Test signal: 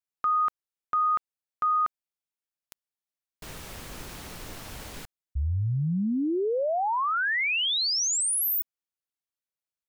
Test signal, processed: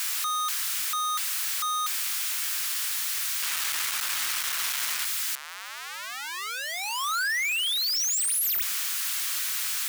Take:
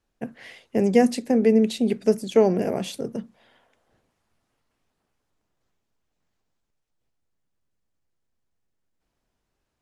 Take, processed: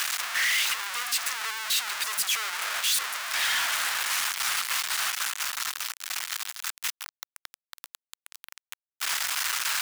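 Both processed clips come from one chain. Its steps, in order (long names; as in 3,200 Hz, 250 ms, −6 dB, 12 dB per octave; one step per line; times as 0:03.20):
sign of each sample alone
high-pass filter 1,200 Hz 24 dB per octave
leveller curve on the samples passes 1
reversed playback
upward compression, threshold −41 dBFS
reversed playback
level +1 dB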